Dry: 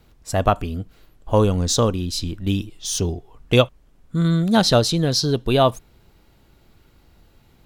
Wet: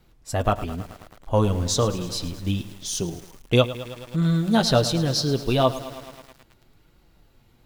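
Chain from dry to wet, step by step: flange 1 Hz, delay 5.3 ms, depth 3.7 ms, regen -37%; bit-crushed delay 108 ms, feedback 80%, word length 6-bit, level -14.5 dB

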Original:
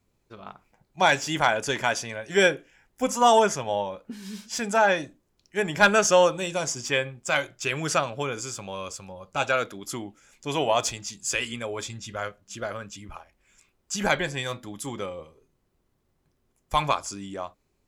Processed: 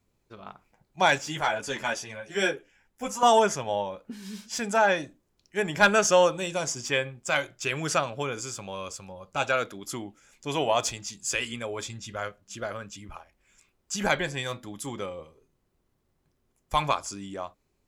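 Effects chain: 1.18–3.23 s: three-phase chorus; trim -1.5 dB

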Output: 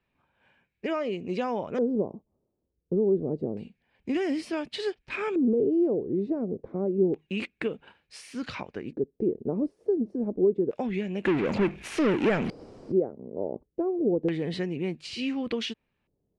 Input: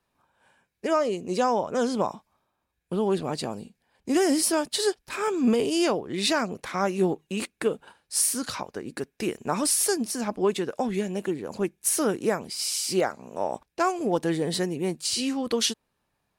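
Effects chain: peaking EQ 1.2 kHz -9 dB 2.5 oct; compression 2.5:1, threshold -28 dBFS, peak gain reduction 6.5 dB; 11.25–12.92 s: power-law waveshaper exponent 0.5; LFO low-pass square 0.28 Hz 440–2400 Hz; trim +1.5 dB

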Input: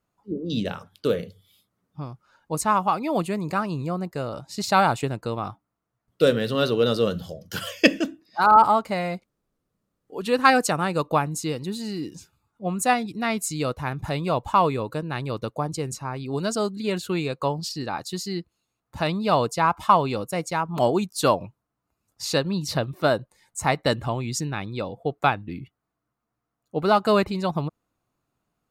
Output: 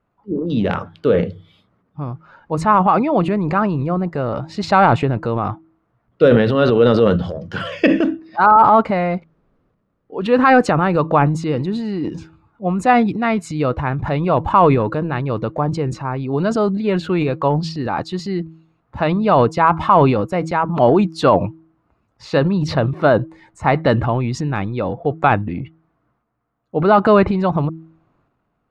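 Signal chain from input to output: low-pass 2 kHz 12 dB/octave; de-hum 161.5 Hz, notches 2; transient shaper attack -1 dB, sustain +8 dB; loudness maximiser +9 dB; trim -1 dB

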